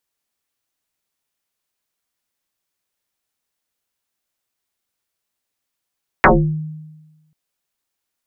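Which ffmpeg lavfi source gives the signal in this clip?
ffmpeg -f lavfi -i "aevalsrc='0.596*pow(10,-3*t/1.2)*sin(2*PI*155*t+12*pow(10,-3*t/0.39)*sin(2*PI*1.21*155*t))':duration=1.09:sample_rate=44100" out.wav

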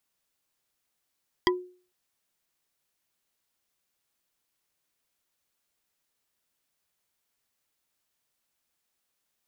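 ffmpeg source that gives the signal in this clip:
ffmpeg -f lavfi -i "aevalsrc='0.119*pow(10,-3*t/0.42)*sin(2*PI*362*t)+0.112*pow(10,-3*t/0.124)*sin(2*PI*998*t)+0.106*pow(10,-3*t/0.055)*sin(2*PI*1956.2*t)+0.1*pow(10,-3*t/0.03)*sin(2*PI*3233.7*t)+0.0944*pow(10,-3*t/0.019)*sin(2*PI*4829.1*t)':duration=0.45:sample_rate=44100" out.wav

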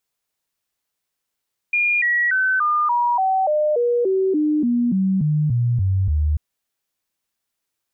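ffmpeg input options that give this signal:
ffmpeg -f lavfi -i "aevalsrc='0.168*clip(min(mod(t,0.29),0.29-mod(t,0.29))/0.005,0,1)*sin(2*PI*2420*pow(2,-floor(t/0.29)/3)*mod(t,0.29))':duration=4.64:sample_rate=44100" out.wav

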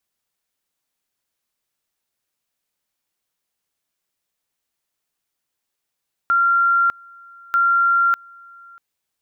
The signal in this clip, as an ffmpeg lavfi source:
ffmpeg -f lavfi -i "aevalsrc='pow(10,(-13-27.5*gte(mod(t,1.24),0.6))/20)*sin(2*PI*1380*t)':duration=2.48:sample_rate=44100" out.wav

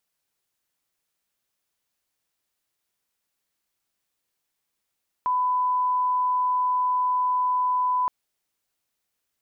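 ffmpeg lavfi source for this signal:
ffmpeg -f lavfi -i "sine=frequency=1000:duration=2.82:sample_rate=44100,volume=-1.94dB" out.wav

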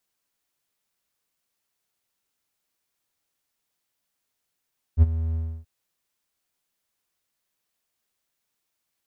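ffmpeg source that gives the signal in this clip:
ffmpeg -f lavfi -i "aevalsrc='0.447*(1-4*abs(mod(80.9*t+0.25,1)-0.5))':duration=0.68:sample_rate=44100,afade=type=in:duration=0.051,afade=type=out:start_time=0.051:duration=0.029:silence=0.2,afade=type=out:start_time=0.38:duration=0.3" out.wav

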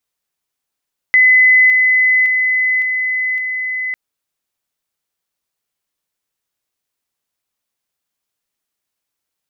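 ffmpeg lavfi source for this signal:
ffmpeg -f lavfi -i "aevalsrc='pow(10,(-6-3*floor(t/0.56))/20)*sin(2*PI*2020*t)':duration=2.8:sample_rate=44100" out.wav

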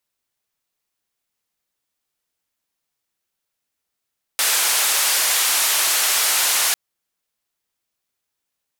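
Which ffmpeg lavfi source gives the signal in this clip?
ffmpeg -f lavfi -i "anoisesrc=color=white:duration=2.35:sample_rate=44100:seed=1,highpass=frequency=730,lowpass=frequency=13000,volume=-11.1dB" out.wav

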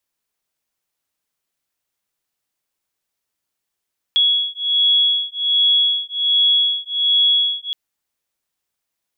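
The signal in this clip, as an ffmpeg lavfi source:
ffmpeg -f lavfi -i "aevalsrc='0.141*(sin(2*PI*3350*t)+sin(2*PI*3351.3*t))':duration=3.57:sample_rate=44100" out.wav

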